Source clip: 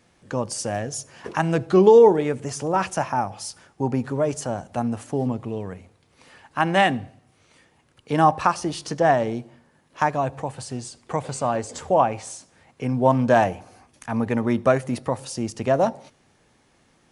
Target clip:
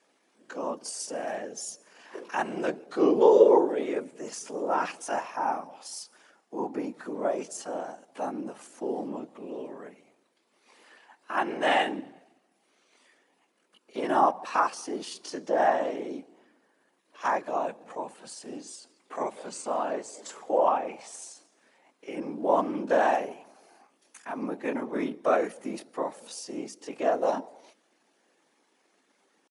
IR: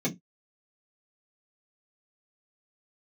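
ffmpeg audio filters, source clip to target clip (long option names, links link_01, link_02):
-af "atempo=0.58,afftfilt=real='hypot(re,im)*cos(2*PI*random(0))':imag='hypot(re,im)*sin(2*PI*random(1))':win_size=512:overlap=0.75,highpass=frequency=260:width=0.5412,highpass=frequency=260:width=1.3066"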